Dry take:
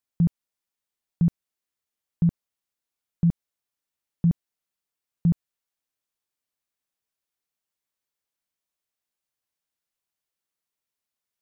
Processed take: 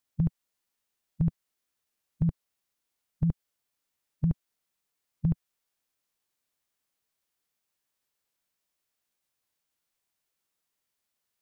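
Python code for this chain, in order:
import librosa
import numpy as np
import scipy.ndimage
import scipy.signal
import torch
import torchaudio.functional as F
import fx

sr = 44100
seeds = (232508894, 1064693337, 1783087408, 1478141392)

y = fx.formant_shift(x, sr, semitones=-3)
y = fx.dynamic_eq(y, sr, hz=130.0, q=0.72, threshold_db=-36.0, ratio=4.0, max_db=-7)
y = y * librosa.db_to_amplitude(4.5)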